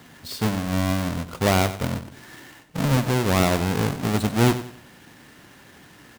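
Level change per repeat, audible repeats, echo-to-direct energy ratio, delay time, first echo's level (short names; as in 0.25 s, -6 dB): -9.0 dB, 3, -12.0 dB, 93 ms, -12.5 dB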